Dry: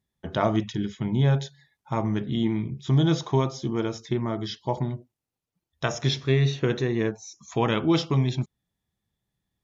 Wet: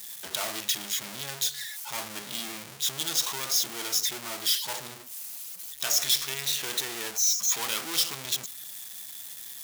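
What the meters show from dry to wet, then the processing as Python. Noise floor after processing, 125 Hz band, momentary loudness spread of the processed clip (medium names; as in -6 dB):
-44 dBFS, -26.5 dB, 14 LU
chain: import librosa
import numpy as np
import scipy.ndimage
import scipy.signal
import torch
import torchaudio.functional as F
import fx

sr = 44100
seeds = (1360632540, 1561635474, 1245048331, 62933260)

y = fx.power_curve(x, sr, exponent=0.35)
y = np.diff(y, prepend=0.0)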